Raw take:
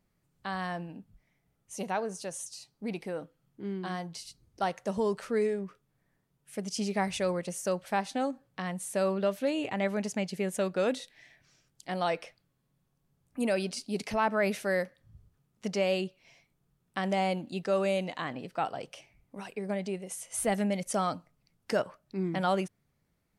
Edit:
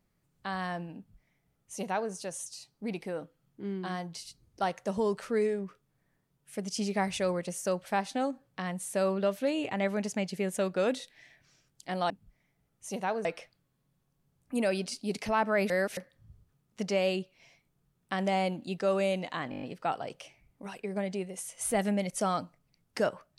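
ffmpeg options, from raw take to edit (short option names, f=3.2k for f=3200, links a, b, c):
-filter_complex "[0:a]asplit=11[a][b][c][d][e][f][g][h][i][j][k];[a]atrim=end=12.102[l];[b]atrim=start=0.968:end=2.122[m];[c]atrim=start=12.098:end=14.552[n];[d]atrim=start=14.548:end=14.822,asetpts=PTS-STARTPTS,areverse[o];[e]atrim=start=14.818:end=18.372[p];[f]atrim=start=18.348:end=18.372[q];[g]atrim=start=18.348:end=18.372[r];[h]atrim=start=18.348:end=18.372[s];[i]atrim=start=18.348:end=18.372[t];[j]atrim=start=18.348:end=18.372[u];[k]atrim=start=18.348[v];[l][m]acrossfade=d=0.004:c1=hsin:c2=hsin[w];[w][n]acrossfade=d=0.004:c1=hsin:c2=hsin[x];[x][o]acrossfade=d=0.004:c1=hsin:c2=hsin[y];[y][p]acrossfade=d=0.004:c1=hsin:c2=hsin[z];[z][q]acrossfade=d=0.004:c1=hsin:c2=hsin[aa];[aa][r]acrossfade=d=0.004:c1=hsin:c2=hsin[ab];[ab][s]acrossfade=d=0.004:c1=hsin:c2=hsin[ac];[ac][t]acrossfade=d=0.004:c1=hsin:c2=hsin[ad];[ad][u]acrossfade=d=0.004:c1=hsin:c2=hsin[ae];[ae][v]acrossfade=d=0.004:c1=hsin:c2=hsin"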